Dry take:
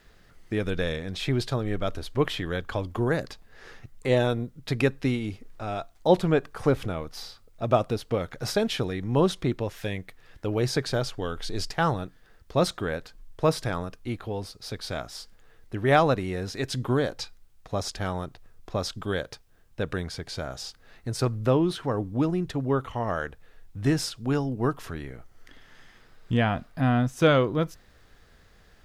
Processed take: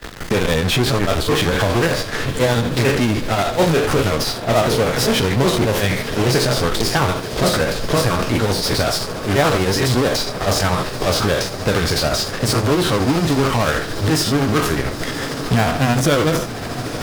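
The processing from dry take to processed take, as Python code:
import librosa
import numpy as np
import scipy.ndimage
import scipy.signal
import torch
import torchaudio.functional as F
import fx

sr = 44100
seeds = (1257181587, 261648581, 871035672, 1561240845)

p1 = fx.spec_trails(x, sr, decay_s=0.57)
p2 = fx.fuzz(p1, sr, gain_db=41.0, gate_db=-50.0)
p3 = p1 + F.gain(torch.from_numpy(p2), -4.0).numpy()
p4 = fx.echo_diffused(p3, sr, ms=1744, feedback_pct=76, wet_db=-15.5)
p5 = fx.stretch_grains(p4, sr, factor=0.59, grain_ms=148.0)
y = fx.band_squash(p5, sr, depth_pct=40)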